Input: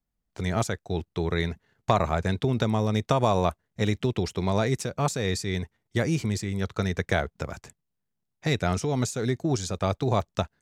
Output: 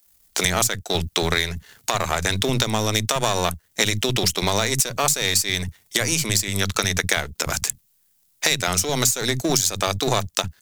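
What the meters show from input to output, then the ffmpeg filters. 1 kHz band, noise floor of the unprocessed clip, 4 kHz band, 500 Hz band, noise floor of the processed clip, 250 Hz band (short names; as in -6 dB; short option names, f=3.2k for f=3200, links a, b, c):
+3.5 dB, -81 dBFS, +14.5 dB, +1.5 dB, -63 dBFS, 0.0 dB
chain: -filter_complex "[0:a]aeval=exprs='if(lt(val(0),0),0.447*val(0),val(0))':c=same,acrossover=split=210[a][b];[a]adelay=50[c];[c][b]amix=inputs=2:normalize=0,crystalizer=i=10:c=0,acompressor=threshold=-32dB:ratio=6,alimiter=level_in=15dB:limit=-1dB:release=50:level=0:latency=1,volume=-1dB"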